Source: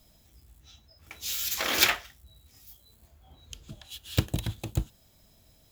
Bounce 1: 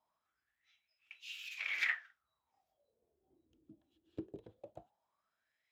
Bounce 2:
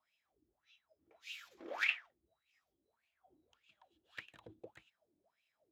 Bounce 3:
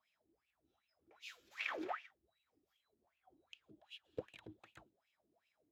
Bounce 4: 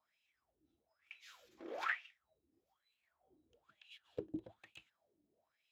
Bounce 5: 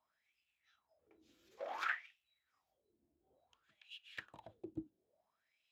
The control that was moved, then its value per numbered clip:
wah-wah, rate: 0.2 Hz, 1.7 Hz, 2.6 Hz, 1.1 Hz, 0.57 Hz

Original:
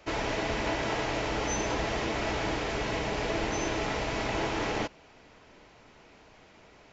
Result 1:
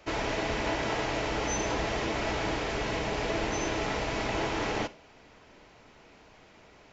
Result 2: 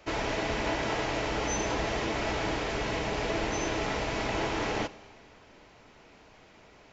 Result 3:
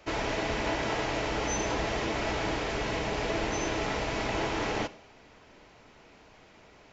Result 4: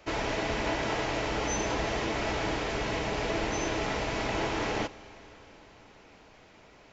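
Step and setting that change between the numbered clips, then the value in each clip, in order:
Schroeder reverb, RT60: 0.31 s, 1.7 s, 0.73 s, 4.6 s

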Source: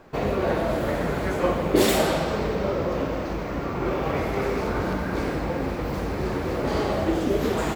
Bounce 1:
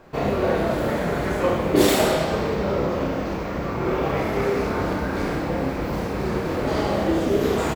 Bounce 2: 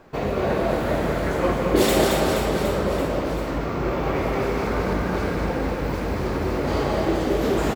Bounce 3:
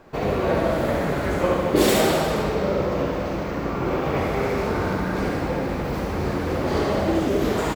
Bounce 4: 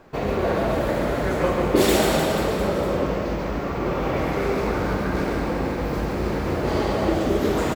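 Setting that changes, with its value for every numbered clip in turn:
reverse bouncing-ball echo, first gap: 30 ms, 220 ms, 70 ms, 140 ms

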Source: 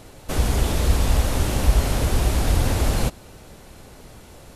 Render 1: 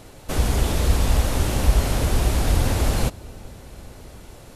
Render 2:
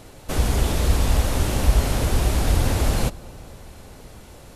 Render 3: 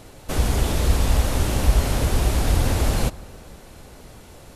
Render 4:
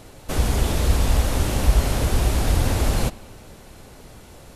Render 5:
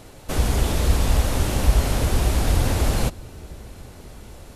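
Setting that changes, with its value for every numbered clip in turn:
bucket-brigade echo, time: 418 ms, 254 ms, 157 ms, 86 ms, 616 ms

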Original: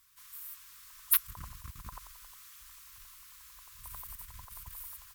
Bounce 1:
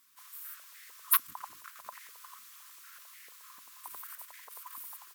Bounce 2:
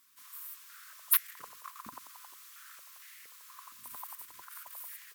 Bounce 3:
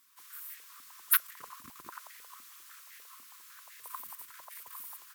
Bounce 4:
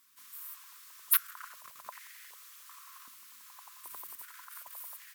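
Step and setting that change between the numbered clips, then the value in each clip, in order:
step-sequenced high-pass, rate: 6.7 Hz, 4.3 Hz, 10 Hz, 2.6 Hz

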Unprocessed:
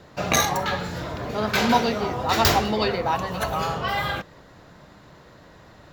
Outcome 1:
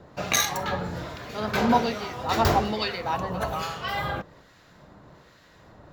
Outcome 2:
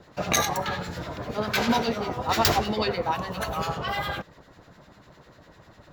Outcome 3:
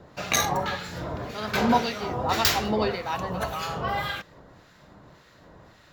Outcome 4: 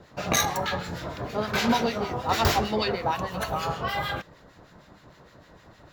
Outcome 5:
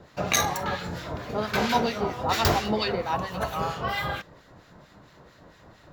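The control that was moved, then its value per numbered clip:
harmonic tremolo, rate: 1.2 Hz, 10 Hz, 1.8 Hz, 6.5 Hz, 4.4 Hz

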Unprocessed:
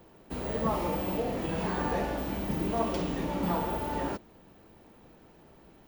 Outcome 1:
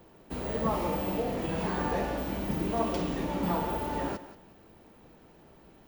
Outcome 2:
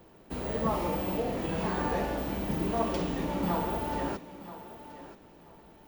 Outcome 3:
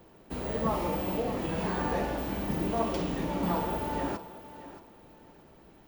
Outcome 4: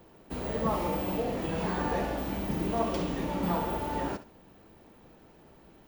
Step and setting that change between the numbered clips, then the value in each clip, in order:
thinning echo, time: 179 ms, 979 ms, 626 ms, 68 ms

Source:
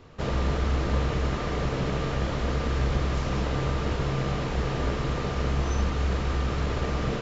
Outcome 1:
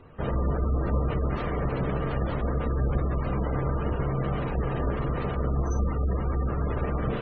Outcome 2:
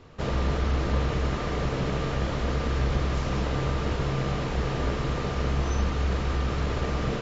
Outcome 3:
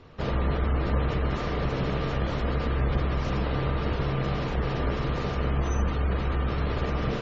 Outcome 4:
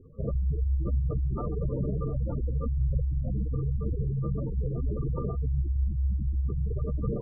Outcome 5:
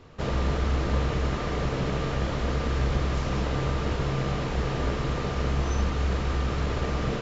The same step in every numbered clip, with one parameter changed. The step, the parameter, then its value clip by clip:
spectral gate, under each frame's peak: -25 dB, -50 dB, -35 dB, -10 dB, -60 dB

